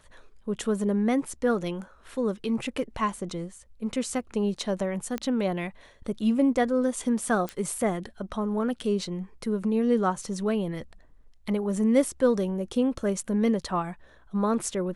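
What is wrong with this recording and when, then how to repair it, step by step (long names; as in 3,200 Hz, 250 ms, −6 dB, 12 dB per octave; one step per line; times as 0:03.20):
0:05.18: click −17 dBFS
0:07.49: click −18 dBFS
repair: click removal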